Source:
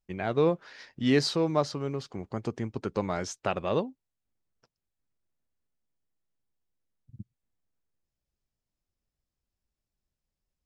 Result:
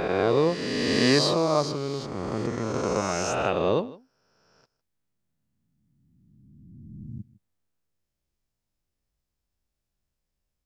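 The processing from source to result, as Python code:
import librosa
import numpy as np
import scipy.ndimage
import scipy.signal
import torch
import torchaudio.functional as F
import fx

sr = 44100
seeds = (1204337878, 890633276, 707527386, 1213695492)

p1 = fx.spec_swells(x, sr, rise_s=2.36)
y = p1 + fx.echo_single(p1, sr, ms=156, db=-20.0, dry=0)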